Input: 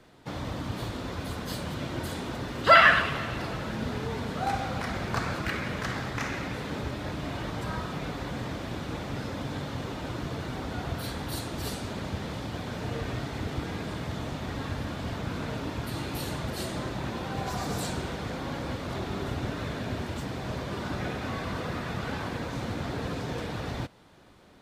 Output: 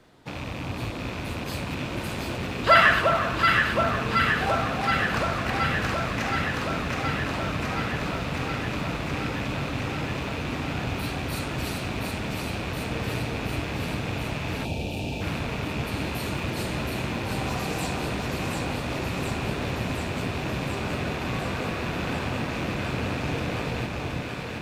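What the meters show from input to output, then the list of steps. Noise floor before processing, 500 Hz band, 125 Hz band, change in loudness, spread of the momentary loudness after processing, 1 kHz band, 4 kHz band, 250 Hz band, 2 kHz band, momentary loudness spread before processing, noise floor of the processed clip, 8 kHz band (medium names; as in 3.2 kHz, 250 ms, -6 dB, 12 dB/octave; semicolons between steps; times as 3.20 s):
-37 dBFS, +4.0 dB, +4.0 dB, +4.0 dB, 9 LU, +3.5 dB, +4.0 dB, +4.0 dB, +4.0 dB, 4 LU, -33 dBFS, +3.5 dB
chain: rattle on loud lows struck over -37 dBFS, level -27 dBFS; echo whose repeats swap between lows and highs 361 ms, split 1.2 kHz, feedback 87%, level -2 dB; time-frequency box 14.65–15.21 s, 930–2300 Hz -17 dB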